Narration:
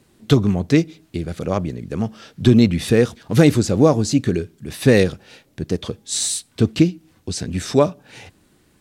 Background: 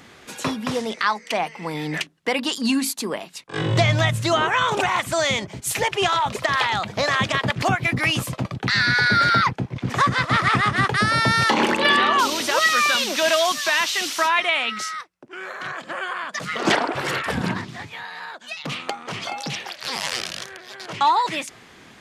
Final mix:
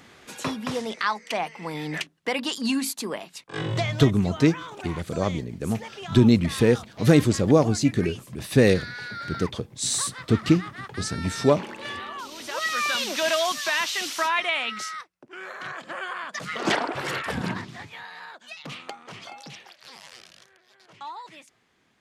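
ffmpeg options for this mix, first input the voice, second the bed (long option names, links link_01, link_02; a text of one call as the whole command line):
ffmpeg -i stem1.wav -i stem2.wav -filter_complex "[0:a]adelay=3700,volume=-4dB[link_01];[1:a]volume=9.5dB,afade=type=out:start_time=3.51:duration=0.66:silence=0.199526,afade=type=in:start_time=12.28:duration=0.79:silence=0.211349,afade=type=out:start_time=17.62:duration=2.44:silence=0.16788[link_02];[link_01][link_02]amix=inputs=2:normalize=0" out.wav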